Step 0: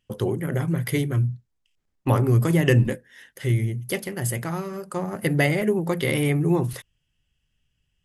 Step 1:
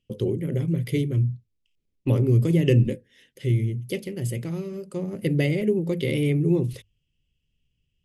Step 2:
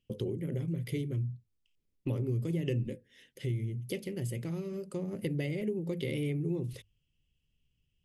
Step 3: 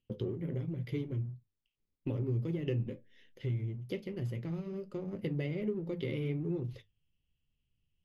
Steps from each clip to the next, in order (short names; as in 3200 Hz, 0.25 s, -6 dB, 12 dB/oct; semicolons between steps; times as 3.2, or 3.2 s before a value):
LPF 3000 Hz 6 dB/oct; band shelf 1100 Hz -15.5 dB; notches 50/100 Hz
compressor 2.5:1, threshold -31 dBFS, peak gain reduction 11.5 dB; gain -3 dB
in parallel at -8 dB: backlash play -34.5 dBFS; on the sum: flange 1.2 Hz, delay 8.1 ms, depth 4.1 ms, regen -60%; running mean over 5 samples